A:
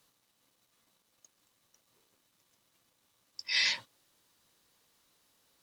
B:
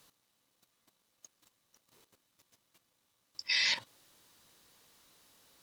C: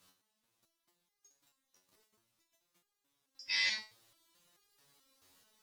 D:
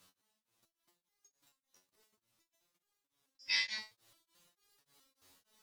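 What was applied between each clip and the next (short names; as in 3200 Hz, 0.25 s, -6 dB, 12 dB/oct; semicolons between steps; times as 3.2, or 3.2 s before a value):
level quantiser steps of 12 dB; gain +7 dB
stepped resonator 4.6 Hz 92–410 Hz; gain +6 dB
beating tremolo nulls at 3.4 Hz; gain +2 dB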